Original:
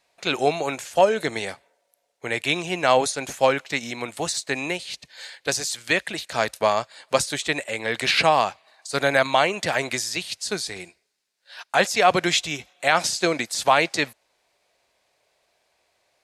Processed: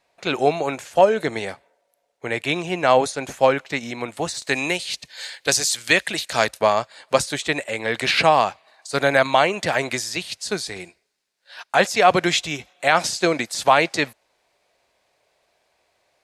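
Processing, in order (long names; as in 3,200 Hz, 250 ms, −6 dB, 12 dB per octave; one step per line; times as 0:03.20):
high-shelf EQ 2,500 Hz −7.5 dB, from 0:04.42 +4 dB, from 0:06.47 −4 dB
level +3 dB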